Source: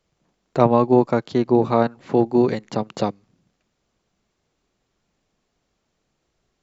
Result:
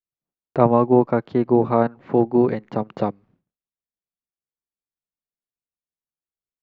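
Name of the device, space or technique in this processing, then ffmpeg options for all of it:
hearing-loss simulation: -af "lowpass=2000,agate=range=0.0224:threshold=0.00282:ratio=3:detection=peak"

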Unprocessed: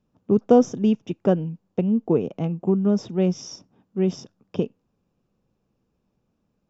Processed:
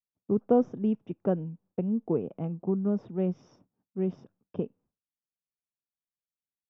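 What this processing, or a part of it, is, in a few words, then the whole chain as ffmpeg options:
hearing-loss simulation: -af "lowpass=1700,agate=range=0.0224:threshold=0.00355:ratio=3:detection=peak,volume=0.422"

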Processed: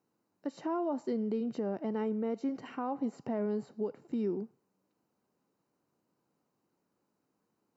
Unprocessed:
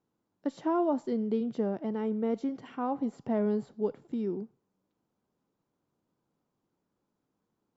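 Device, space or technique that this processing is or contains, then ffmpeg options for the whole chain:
PA system with an anti-feedback notch: -af "highpass=f=170:p=1,asuperstop=centerf=3400:order=4:qfactor=6.4,alimiter=level_in=1.5:limit=0.0631:level=0:latency=1:release=244,volume=0.668,volume=1.33"

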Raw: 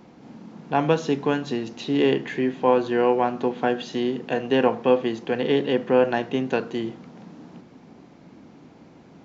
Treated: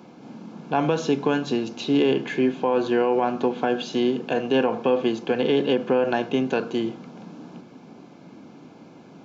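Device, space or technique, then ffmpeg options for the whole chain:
PA system with an anti-feedback notch: -af "highpass=130,asuperstop=centerf=1900:order=8:qfactor=7.2,alimiter=limit=0.188:level=0:latency=1:release=52,volume=1.41"

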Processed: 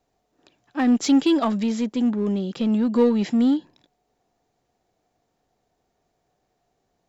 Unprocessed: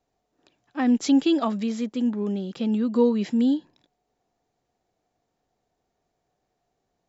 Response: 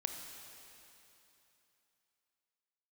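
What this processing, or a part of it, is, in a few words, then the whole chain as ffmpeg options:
parallel distortion: -filter_complex "[0:a]asplit=2[s0][s1];[s1]asoftclip=type=hard:threshold=0.0562,volume=0.631[s2];[s0][s2]amix=inputs=2:normalize=0"

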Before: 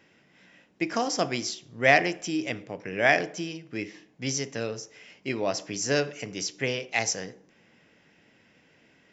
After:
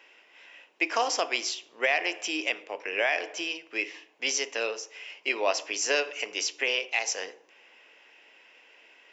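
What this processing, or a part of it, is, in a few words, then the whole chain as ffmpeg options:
laptop speaker: -af "highpass=f=390:w=0.5412,highpass=f=390:w=1.3066,equalizer=f=980:t=o:w=0.59:g=6,equalizer=f=2700:t=o:w=0.59:g=10,alimiter=limit=0.2:level=0:latency=1:release=248,volume=1.12"

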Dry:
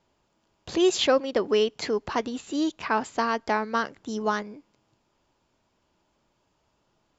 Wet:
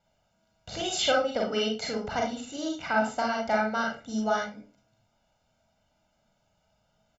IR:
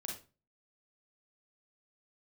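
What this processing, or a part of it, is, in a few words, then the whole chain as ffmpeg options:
microphone above a desk: -filter_complex "[0:a]aecho=1:1:1.4:0.83[s0];[1:a]atrim=start_sample=2205[s1];[s0][s1]afir=irnorm=-1:irlink=0,volume=0.841"

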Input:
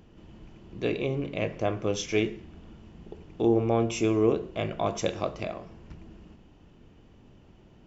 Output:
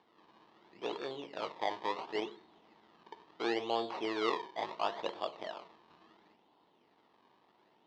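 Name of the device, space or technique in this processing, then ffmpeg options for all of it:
circuit-bent sampling toy: -af "acrusher=samples=22:mix=1:aa=0.000001:lfo=1:lforange=22:lforate=0.72,highpass=530,equalizer=f=550:t=q:w=4:g=-4,equalizer=f=910:t=q:w=4:g=6,equalizer=f=1500:t=q:w=4:g=-7,equalizer=f=2400:t=q:w=4:g=-6,lowpass=f=4100:w=0.5412,lowpass=f=4100:w=1.3066,volume=0.631"

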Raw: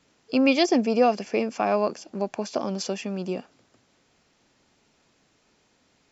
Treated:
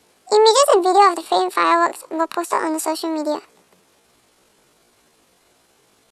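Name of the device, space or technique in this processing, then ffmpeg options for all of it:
chipmunk voice: -af "asetrate=72056,aresample=44100,atempo=0.612027,volume=2.37"

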